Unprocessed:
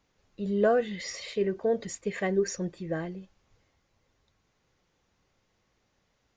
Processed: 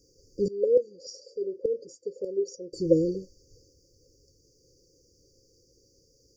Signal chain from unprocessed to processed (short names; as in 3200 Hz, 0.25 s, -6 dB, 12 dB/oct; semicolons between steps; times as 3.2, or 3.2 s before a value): EQ curve 140 Hz 0 dB, 210 Hz -9 dB, 300 Hz +4 dB, 3400 Hz +12 dB, 7200 Hz +6 dB; 0.48–2.73 LFO band-pass saw down 3.4 Hz 720–1500 Hz; brick-wall FIR band-stop 560–4500 Hz; gain +8.5 dB